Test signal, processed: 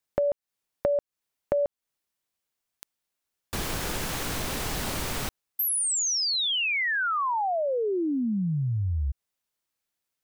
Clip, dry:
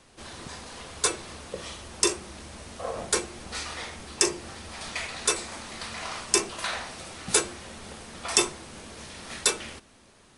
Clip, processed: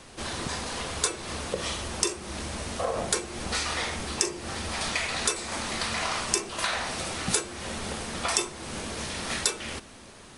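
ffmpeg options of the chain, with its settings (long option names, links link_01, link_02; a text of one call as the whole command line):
ffmpeg -i in.wav -af "acompressor=threshold=-34dB:ratio=4,volume=8.5dB" out.wav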